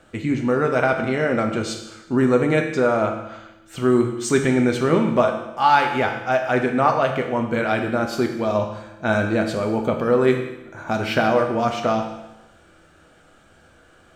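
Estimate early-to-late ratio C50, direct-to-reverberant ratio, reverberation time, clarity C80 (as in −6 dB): 6.5 dB, 3.0 dB, 0.95 s, 9.0 dB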